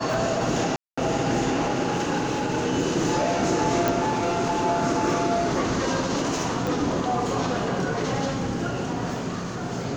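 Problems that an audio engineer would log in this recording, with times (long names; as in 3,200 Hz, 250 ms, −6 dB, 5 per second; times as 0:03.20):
0:00.76–0:00.97: drop-out 215 ms
0:03.88: click
0:06.67: click −14 dBFS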